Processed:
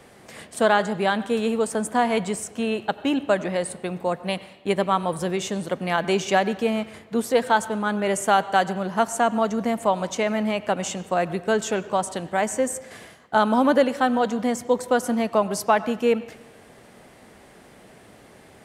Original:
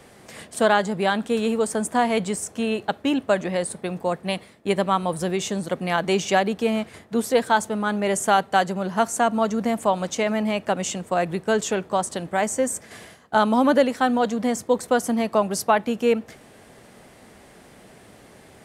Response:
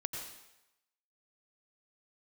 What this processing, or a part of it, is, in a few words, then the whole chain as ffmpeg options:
filtered reverb send: -filter_complex "[0:a]asplit=2[a][b];[b]highpass=f=250:p=1,lowpass=4.3k[c];[1:a]atrim=start_sample=2205[d];[c][d]afir=irnorm=-1:irlink=0,volume=-11dB[e];[a][e]amix=inputs=2:normalize=0,volume=-2dB"

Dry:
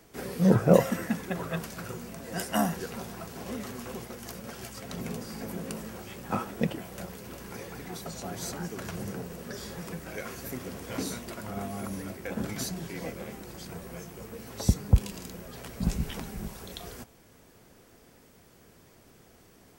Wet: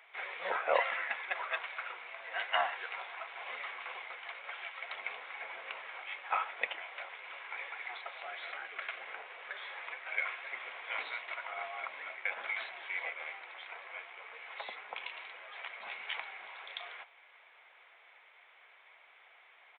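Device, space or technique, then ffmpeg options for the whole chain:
musical greeting card: -filter_complex "[0:a]aresample=8000,aresample=44100,highpass=f=770:w=0.5412,highpass=f=770:w=1.3066,equalizer=f=2.2k:t=o:w=0.29:g=11.5,asettb=1/sr,asplit=3[a][b][c];[a]atrim=end=8.234[d];[b]atrim=start=8.23:end=9.01,asetpts=PTS-STARTPTS,afade=t=in:d=0.004:c=qsin,afade=t=out:st=0.776:d=0.004:c=qsin,equalizer=f=920:t=o:w=0.31:g=-9.5[e];[c]atrim=start=9.006[f];[d][e]acrossfade=d=0.004:c1=hsin:c2=qsin[g];[g][f]acrossfade=d=0.004:c1=qsin:c2=hsin,volume=1.5dB"

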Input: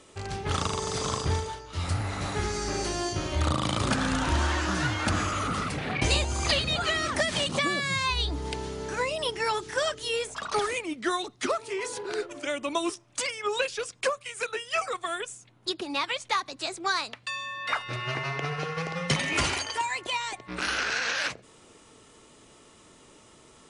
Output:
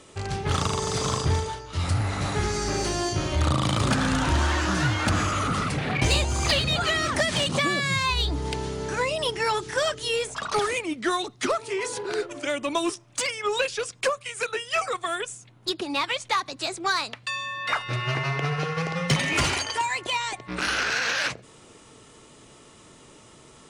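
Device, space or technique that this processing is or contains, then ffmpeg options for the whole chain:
parallel distortion: -filter_complex "[0:a]equalizer=f=130:t=o:w=0.71:g=4.5,asplit=2[a][b];[b]asoftclip=type=hard:threshold=-25.5dB,volume=-6dB[c];[a][c]amix=inputs=2:normalize=0"

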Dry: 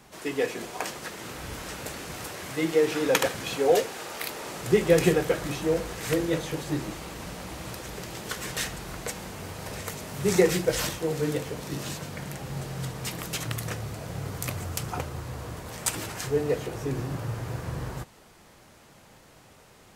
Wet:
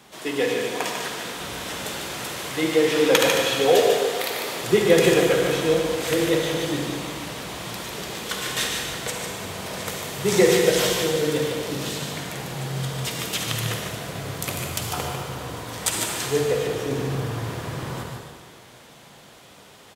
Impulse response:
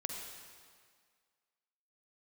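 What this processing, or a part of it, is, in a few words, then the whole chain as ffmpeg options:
PA in a hall: -filter_complex "[0:a]highpass=f=160:p=1,equalizer=f=3.4k:t=o:w=0.48:g=6,aecho=1:1:148:0.501[a];[1:a]atrim=start_sample=2205[b];[a][b]afir=irnorm=-1:irlink=0,volume=4.5dB"

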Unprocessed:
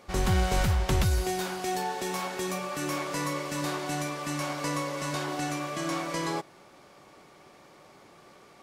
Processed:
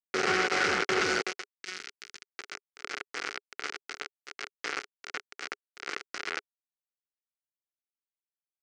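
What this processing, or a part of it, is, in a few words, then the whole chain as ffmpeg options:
hand-held game console: -filter_complex "[0:a]acrusher=bits=3:mix=0:aa=0.000001,highpass=410,equalizer=f=410:t=q:w=4:g=8,equalizer=f=610:t=q:w=4:g=-8,equalizer=f=970:t=q:w=4:g=-9,equalizer=f=1.4k:t=q:w=4:g=8,equalizer=f=2.1k:t=q:w=4:g=5,equalizer=f=3.6k:t=q:w=4:g=-6,lowpass=f=5.5k:w=0.5412,lowpass=f=5.5k:w=1.3066,asettb=1/sr,asplit=3[a][b][c];[a]atrim=end=1.554[d];[b]atrim=start=1.55:end=2.35,asetpts=PTS-STARTPTS,afade=t=in:d=0.004:c=qsin,afade=t=out:st=0.796:d=0.004:c=qsin,equalizer=f=720:w=0.52:g=-15[e];[c]atrim=start=2.346[f];[d][e]acrossfade=d=0.004:c1=hsin:c2=qsin[g];[g][f]acrossfade=d=0.004:c1=qsin:c2=hsin"

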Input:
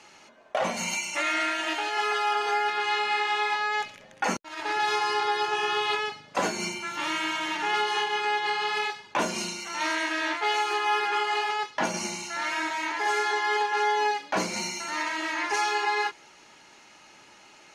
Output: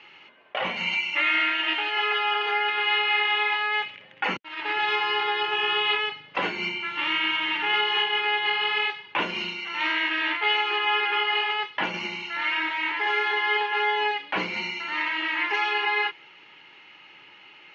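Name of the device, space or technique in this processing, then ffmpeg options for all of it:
guitar cabinet: -af "highpass=100,equalizer=f=230:t=q:w=4:g=-7,equalizer=f=650:t=q:w=4:g=-8,equalizer=f=2.1k:t=q:w=4:g=6,equalizer=f=2.9k:t=q:w=4:g=9,lowpass=f=3.6k:w=0.5412,lowpass=f=3.6k:w=1.3066"

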